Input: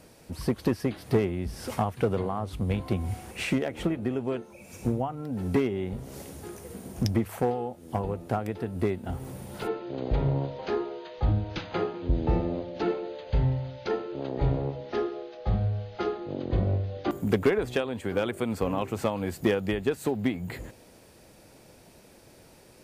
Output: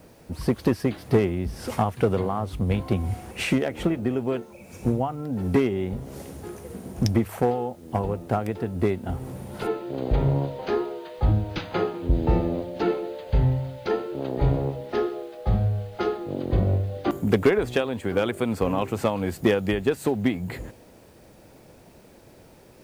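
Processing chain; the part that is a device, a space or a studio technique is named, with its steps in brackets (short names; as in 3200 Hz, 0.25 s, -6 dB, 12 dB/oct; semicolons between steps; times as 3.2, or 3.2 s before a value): plain cassette with noise reduction switched in (mismatched tape noise reduction decoder only; wow and flutter 20 cents; white noise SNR 39 dB); gain +4 dB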